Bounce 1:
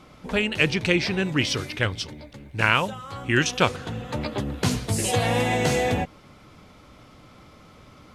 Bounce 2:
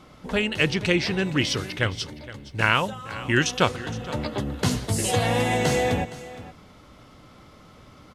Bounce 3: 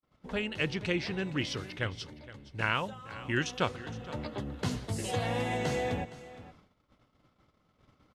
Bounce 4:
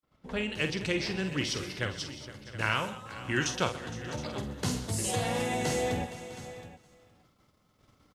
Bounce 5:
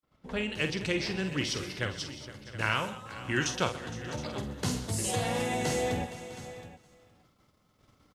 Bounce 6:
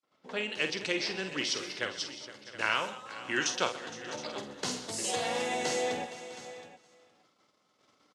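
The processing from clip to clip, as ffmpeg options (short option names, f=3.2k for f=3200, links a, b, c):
-af "bandreject=f=2.4k:w=15,aecho=1:1:466:0.15"
-af "agate=range=-43dB:threshold=-47dB:ratio=16:detection=peak,highshelf=f=7.5k:g=-10,volume=-9dB"
-filter_complex "[0:a]aecho=1:1:48|129|205|654|720:0.376|0.15|0.106|0.126|0.168,acrossover=split=480|5400[a][b][c];[c]dynaudnorm=f=340:g=3:m=10dB[d];[a][b][d]amix=inputs=3:normalize=0"
-af anull
-af "highpass=180,lowpass=5.9k,bass=f=250:g=-10,treble=f=4k:g=6"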